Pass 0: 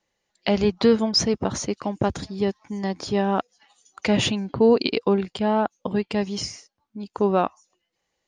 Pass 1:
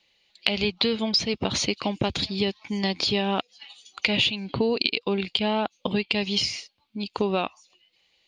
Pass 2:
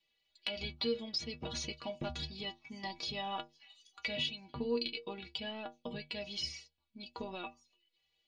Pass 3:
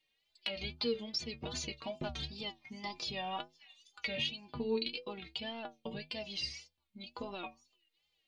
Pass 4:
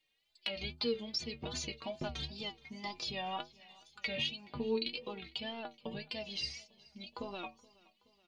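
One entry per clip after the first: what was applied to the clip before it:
flat-topped bell 3,200 Hz +15 dB 1.3 octaves; downward compressor 6 to 1, threshold −23 dBFS, peak gain reduction 15.5 dB; level +2 dB
low-shelf EQ 61 Hz +11 dB; stiff-string resonator 71 Hz, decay 0.42 s, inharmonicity 0.03; level −4.5 dB
tape wow and flutter 100 cents
repeating echo 424 ms, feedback 57%, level −24 dB

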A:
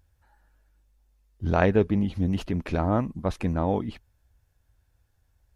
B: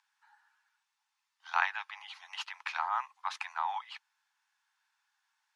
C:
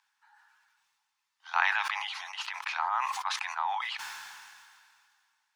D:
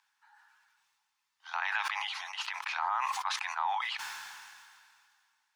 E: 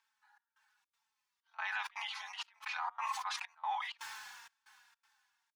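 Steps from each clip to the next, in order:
low-pass filter 5,900 Hz 12 dB per octave; in parallel at +2 dB: brickwall limiter −14.5 dBFS, peak gain reduction 8.5 dB; on the sum: Butterworth high-pass 840 Hz 72 dB per octave; level −4 dB
level that may fall only so fast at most 27 dB per second; level +1.5 dB
brickwall limiter −21 dBFS, peak gain reduction 10.5 dB
gate pattern "xxxx..xxx.x" 161 BPM −24 dB; barber-pole flanger 3.9 ms −2 Hz; level −2 dB

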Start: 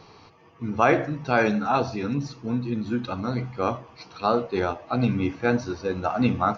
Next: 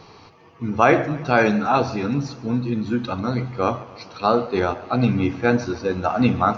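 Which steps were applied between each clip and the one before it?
feedback echo with a swinging delay time 142 ms, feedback 62%, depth 61 cents, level −19 dB
level +4 dB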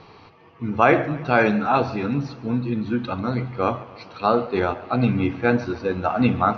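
Chebyshev low-pass filter 3,200 Hz, order 2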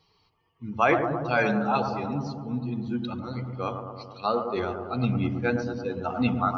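spectral dynamics exaggerated over time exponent 1.5
high-shelf EQ 4,000 Hz +10 dB
on a send: bucket-brigade delay 110 ms, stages 1,024, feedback 71%, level −6.5 dB
on the sum: level −4.5 dB

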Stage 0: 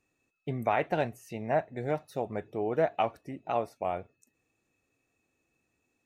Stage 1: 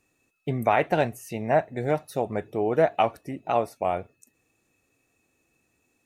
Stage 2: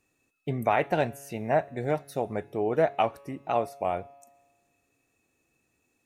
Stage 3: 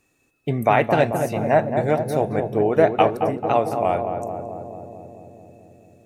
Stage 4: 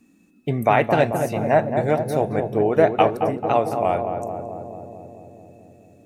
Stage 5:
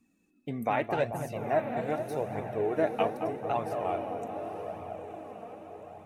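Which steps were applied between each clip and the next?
parametric band 11,000 Hz +6.5 dB 0.99 octaves; level +6 dB
tuned comb filter 140 Hz, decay 1.4 s, mix 40%; level +1.5 dB
feedback echo with a low-pass in the loop 220 ms, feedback 79%, low-pass 1,000 Hz, level −5 dB; level +7 dB
noise in a band 180–320 Hz −58 dBFS
feedback delay with all-pass diffusion 916 ms, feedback 53%, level −10 dB; flanger 0.83 Hz, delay 0.8 ms, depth 3.7 ms, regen +37%; level −7.5 dB

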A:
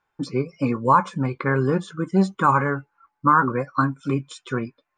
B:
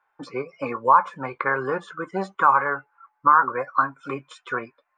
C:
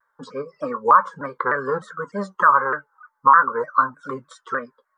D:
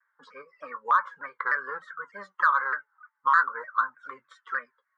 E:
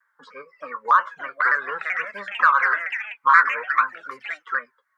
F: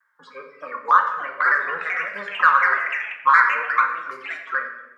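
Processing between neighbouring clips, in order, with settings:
three-way crossover with the lows and the highs turned down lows −22 dB, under 540 Hz, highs −16 dB, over 2,200 Hz; in parallel at +1.5 dB: downward compressor, threshold −27 dBFS, peak gain reduction 14.5 dB
phaser with its sweep stopped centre 500 Hz, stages 8; pitch modulation by a square or saw wave saw down 3.3 Hz, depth 160 cents; level +3.5 dB
resonant band-pass 2,000 Hz, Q 2.6; in parallel at −11.5 dB: soft clipping −19 dBFS, distortion −12 dB
delay with pitch and tempo change per echo 697 ms, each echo +4 semitones, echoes 2, each echo −6 dB; level +5.5 dB
convolution reverb RT60 1.0 s, pre-delay 5 ms, DRR 3 dB

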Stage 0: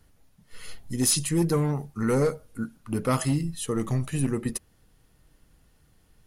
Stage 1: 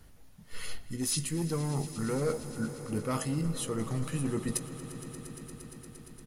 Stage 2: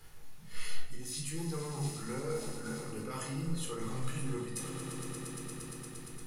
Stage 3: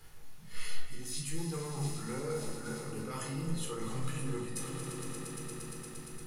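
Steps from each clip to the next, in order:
reversed playback; downward compressor 10 to 1, threshold −33 dBFS, peak gain reduction 14.5 dB; reversed playback; double-tracking delay 19 ms −13 dB; echo that builds up and dies away 116 ms, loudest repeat 5, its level −17.5 dB; level +4 dB
low-shelf EQ 480 Hz −11 dB; reversed playback; downward compressor 6 to 1, threshold −44 dBFS, peak gain reduction 15 dB; reversed playback; rectangular room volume 930 cubic metres, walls furnished, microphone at 4 metres; level +1.5 dB
echo with a time of its own for lows and highs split 540 Hz, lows 566 ms, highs 272 ms, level −12.5 dB

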